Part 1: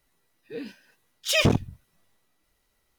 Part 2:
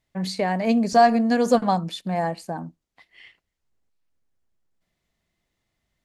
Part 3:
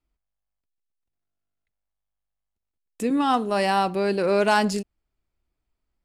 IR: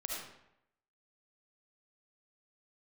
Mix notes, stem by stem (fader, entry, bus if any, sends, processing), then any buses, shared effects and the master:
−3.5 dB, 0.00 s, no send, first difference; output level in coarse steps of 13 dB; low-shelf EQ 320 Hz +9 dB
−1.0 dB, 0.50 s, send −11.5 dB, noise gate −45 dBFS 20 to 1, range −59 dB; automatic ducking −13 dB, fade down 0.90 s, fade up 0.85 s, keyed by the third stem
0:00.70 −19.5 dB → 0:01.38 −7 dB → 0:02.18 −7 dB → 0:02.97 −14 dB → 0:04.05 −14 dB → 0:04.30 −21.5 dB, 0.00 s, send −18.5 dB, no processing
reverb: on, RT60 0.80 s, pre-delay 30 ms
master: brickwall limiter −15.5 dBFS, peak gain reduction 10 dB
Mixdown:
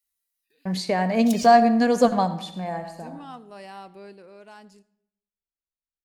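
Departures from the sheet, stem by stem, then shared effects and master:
stem 3 −19.5 dB → −25.5 dB
master: missing brickwall limiter −15.5 dBFS, peak gain reduction 10 dB

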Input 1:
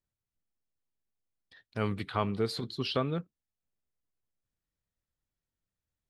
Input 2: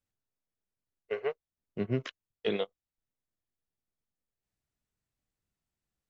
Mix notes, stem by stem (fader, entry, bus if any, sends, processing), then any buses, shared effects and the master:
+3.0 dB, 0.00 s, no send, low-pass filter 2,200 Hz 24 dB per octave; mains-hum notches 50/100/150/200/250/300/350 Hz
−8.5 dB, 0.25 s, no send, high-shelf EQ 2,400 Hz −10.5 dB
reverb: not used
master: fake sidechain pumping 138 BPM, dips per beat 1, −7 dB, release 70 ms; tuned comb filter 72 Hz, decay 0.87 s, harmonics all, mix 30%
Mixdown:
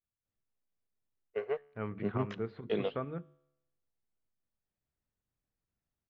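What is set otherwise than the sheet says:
stem 1 +3.0 dB → −4.0 dB
stem 2 −8.5 dB → +1.5 dB

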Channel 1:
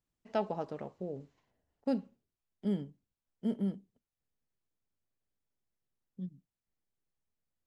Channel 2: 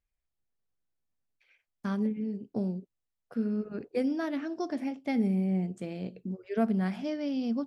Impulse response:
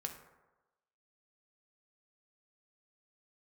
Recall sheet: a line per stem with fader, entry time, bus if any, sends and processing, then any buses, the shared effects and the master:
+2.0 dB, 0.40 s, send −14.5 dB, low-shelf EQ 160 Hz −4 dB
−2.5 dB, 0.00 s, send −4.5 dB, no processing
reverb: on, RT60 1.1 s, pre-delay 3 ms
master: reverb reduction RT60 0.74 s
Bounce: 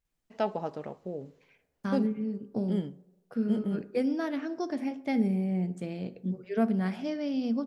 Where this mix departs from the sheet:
stem 1: entry 0.40 s → 0.05 s
master: missing reverb reduction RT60 0.74 s

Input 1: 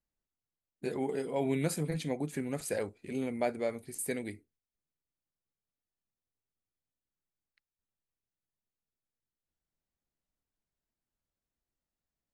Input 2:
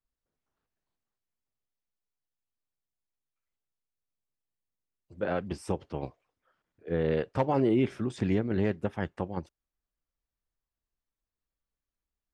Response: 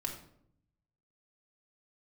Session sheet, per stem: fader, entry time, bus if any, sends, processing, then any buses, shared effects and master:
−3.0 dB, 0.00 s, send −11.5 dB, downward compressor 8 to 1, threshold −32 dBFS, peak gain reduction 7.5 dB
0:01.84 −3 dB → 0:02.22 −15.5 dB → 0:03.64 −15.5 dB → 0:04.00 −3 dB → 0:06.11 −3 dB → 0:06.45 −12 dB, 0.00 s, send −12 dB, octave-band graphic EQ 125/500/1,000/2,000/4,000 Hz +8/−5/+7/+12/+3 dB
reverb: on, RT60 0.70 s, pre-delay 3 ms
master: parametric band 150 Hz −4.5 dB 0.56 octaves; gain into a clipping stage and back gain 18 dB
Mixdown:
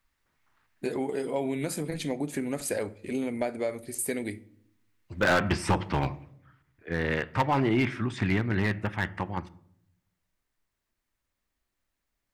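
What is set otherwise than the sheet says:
stem 1 −3.0 dB → +5.0 dB
stem 2 −3.0 dB → +7.0 dB

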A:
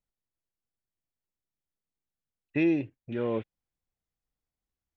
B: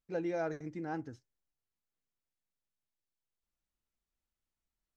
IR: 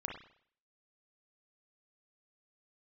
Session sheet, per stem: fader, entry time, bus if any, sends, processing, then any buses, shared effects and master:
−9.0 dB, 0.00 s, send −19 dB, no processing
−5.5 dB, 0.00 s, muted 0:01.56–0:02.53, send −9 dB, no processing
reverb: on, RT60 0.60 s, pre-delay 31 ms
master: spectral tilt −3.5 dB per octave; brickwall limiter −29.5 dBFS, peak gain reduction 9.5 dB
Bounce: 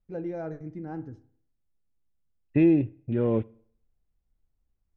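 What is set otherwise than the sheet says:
stem A −9.0 dB → −1.0 dB
master: missing brickwall limiter −29.5 dBFS, peak gain reduction 9.5 dB

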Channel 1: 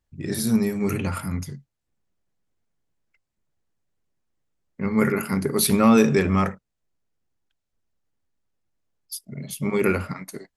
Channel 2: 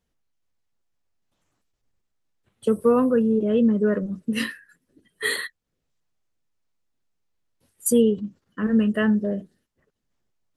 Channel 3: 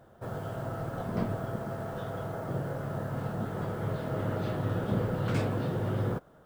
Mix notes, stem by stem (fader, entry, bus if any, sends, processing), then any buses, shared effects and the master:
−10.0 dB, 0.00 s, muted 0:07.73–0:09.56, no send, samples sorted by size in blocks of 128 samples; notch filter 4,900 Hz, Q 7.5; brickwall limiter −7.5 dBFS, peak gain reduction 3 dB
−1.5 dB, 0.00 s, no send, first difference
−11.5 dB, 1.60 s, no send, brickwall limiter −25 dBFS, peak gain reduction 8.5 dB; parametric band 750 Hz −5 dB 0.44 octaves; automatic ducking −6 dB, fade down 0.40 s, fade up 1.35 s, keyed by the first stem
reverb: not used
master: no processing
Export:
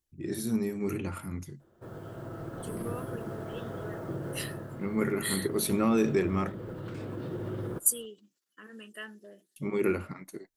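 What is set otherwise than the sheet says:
stem 1: missing samples sorted by size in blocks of 128 samples
stem 3 −11.5 dB → −3.0 dB
master: extra parametric band 340 Hz +10 dB 0.39 octaves

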